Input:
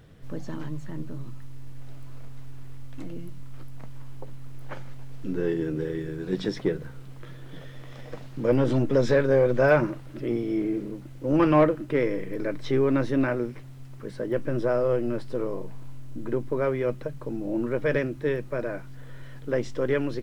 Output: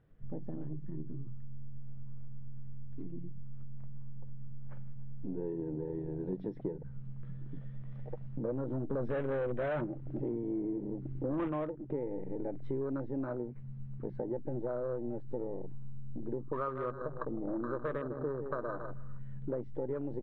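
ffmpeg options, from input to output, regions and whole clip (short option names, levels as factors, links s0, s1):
-filter_complex "[0:a]asettb=1/sr,asplit=3[s0][s1][s2];[s0]atrim=end=8.904[s3];[s1]atrim=start=8.9:end=11.48,asetpts=PTS-STARTPTS,afade=t=in:d=0.004:c=qsin,afade=t=out:st=2.576:d=0.004:c=qsin,acontrast=49,asoftclip=type=hard:threshold=0.188[s4];[s2]atrim=start=11.476[s5];[s3][s4]acrossfade=d=0.004:c1=hsin:c2=qsin[s6];[s6][s5]acrossfade=d=0.004:c1=qsin:c2=hsin,asettb=1/sr,asplit=3[s7][s8][s9];[s7]atrim=end=16.394[s10];[s8]atrim=start=16.39:end=19.19,asetpts=PTS-STARTPTS,afade=t=in:d=0.004:c=qsin,afade=t=out:st=2.796:d=0.004:c=qsin,lowpass=f=1200:t=q:w=9.9,aecho=1:1:156|312|468|624:0.299|0.116|0.0454|0.0177,atrim=end_sample=123480[s11];[s9]atrim=start=19.186[s12];[s10][s11]acrossfade=d=0.004:c1=hsin:c2=qsin[s13];[s13][s12]acrossfade=d=0.004:c1=qsin:c2=hsin,lowpass=2000,afwtdn=0.0282,acompressor=threshold=0.0178:ratio=6,volume=1.12"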